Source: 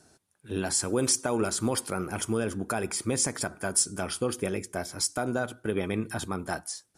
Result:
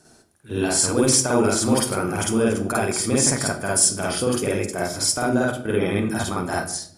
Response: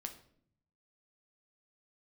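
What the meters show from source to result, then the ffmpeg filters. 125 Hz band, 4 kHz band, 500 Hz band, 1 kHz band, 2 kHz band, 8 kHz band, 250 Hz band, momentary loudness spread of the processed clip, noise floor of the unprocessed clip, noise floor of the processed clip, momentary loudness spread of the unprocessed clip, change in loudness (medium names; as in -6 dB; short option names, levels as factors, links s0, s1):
+8.5 dB, +8.0 dB, +8.5 dB, +8.5 dB, +8.0 dB, +8.0 dB, +9.0 dB, 8 LU, -67 dBFS, -53 dBFS, 8 LU, +8.5 dB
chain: -filter_complex "[0:a]asplit=2[s0][s1];[1:a]atrim=start_sample=2205,adelay=50[s2];[s1][s2]afir=irnorm=-1:irlink=0,volume=2.11[s3];[s0][s3]amix=inputs=2:normalize=0,volume=1.41"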